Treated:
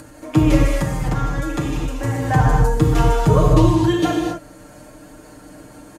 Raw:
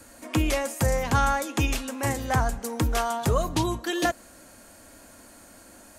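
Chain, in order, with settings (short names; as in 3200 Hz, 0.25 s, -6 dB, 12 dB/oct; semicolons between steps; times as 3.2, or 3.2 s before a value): tilt -2.5 dB/oct; comb 6.6 ms, depth 95%; 0.66–2.28 compressor, threshold -20 dBFS, peak gain reduction 10.5 dB; non-linear reverb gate 0.29 s flat, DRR -1.5 dB; upward compressor, threshold -34 dBFS; HPF 50 Hz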